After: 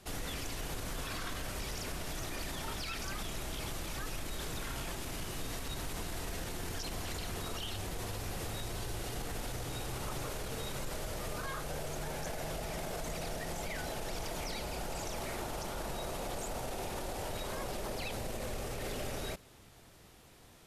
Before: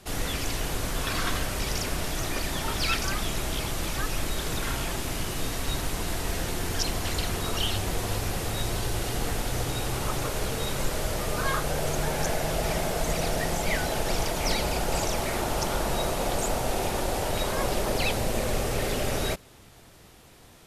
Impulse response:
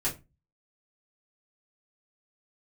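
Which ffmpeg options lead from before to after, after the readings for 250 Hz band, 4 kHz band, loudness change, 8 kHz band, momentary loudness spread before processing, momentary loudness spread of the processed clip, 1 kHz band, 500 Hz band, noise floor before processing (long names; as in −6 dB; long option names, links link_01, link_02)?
−10.5 dB, −11.0 dB, −11.0 dB, −10.5 dB, 3 LU, 1 LU, −11.0 dB, −11.0 dB, −52 dBFS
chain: -af "alimiter=limit=-24dB:level=0:latency=1:release=46,volume=-6dB"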